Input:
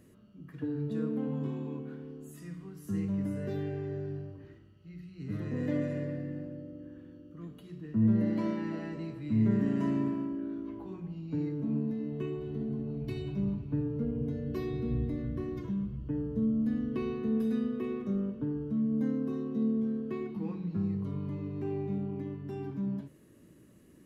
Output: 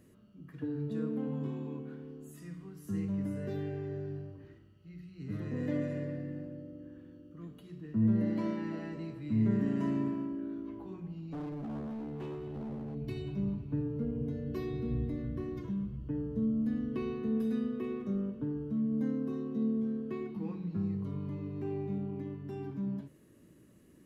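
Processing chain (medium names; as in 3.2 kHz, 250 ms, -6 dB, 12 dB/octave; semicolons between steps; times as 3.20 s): 11.15–12.95 s: overload inside the chain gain 35 dB; trim -2 dB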